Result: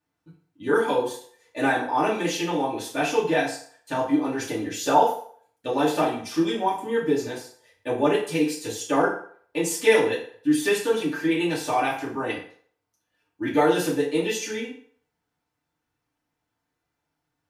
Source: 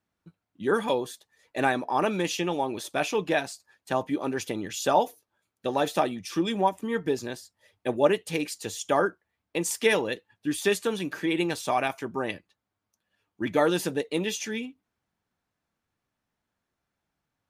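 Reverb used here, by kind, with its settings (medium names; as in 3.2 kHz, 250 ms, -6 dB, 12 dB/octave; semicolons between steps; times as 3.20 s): FDN reverb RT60 0.54 s, low-frequency decay 0.75×, high-frequency decay 0.8×, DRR -7.5 dB; trim -5.5 dB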